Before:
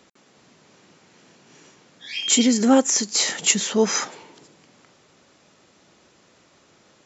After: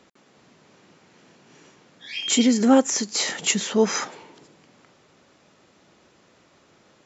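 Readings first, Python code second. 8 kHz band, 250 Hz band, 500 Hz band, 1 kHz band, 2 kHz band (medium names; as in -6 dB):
no reading, 0.0 dB, 0.0 dB, 0.0 dB, -1.0 dB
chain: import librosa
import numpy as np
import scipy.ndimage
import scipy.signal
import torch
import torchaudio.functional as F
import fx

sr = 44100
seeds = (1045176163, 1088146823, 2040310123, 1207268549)

y = fx.high_shelf(x, sr, hz=4800.0, db=-7.0)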